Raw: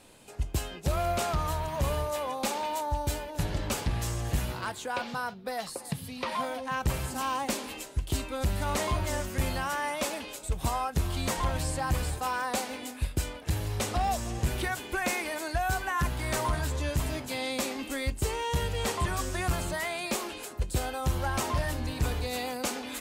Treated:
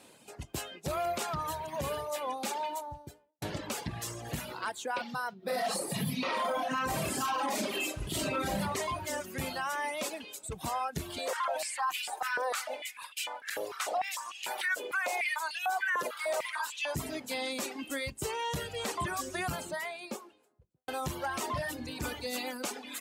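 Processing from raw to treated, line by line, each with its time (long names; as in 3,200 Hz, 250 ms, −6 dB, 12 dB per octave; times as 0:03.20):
0:02.61–0:03.42: fade out and dull
0:05.38–0:08.59: thrown reverb, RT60 0.82 s, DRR −11 dB
0:11.18–0:16.95: high-pass on a step sequencer 6.7 Hz 500–2,700 Hz
0:19.41–0:20.88: fade out and dull
0:22.01–0:22.63: comb filter 3.4 ms, depth 51%
whole clip: reverb reduction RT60 1.4 s; high-pass filter 150 Hz 12 dB per octave; brickwall limiter −24 dBFS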